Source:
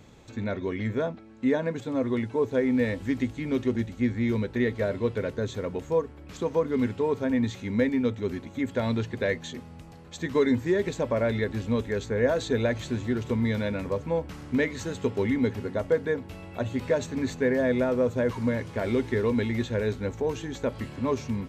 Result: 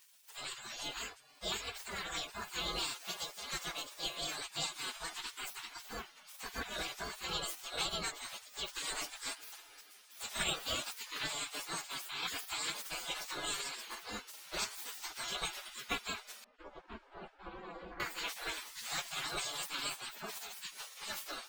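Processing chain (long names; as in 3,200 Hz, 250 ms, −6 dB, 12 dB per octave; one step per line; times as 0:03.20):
partials spread apart or drawn together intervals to 127%
gate on every frequency bin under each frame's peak −30 dB weak
0:16.44–0:18.00: Bessel low-pass filter 740 Hz, order 2
level +10.5 dB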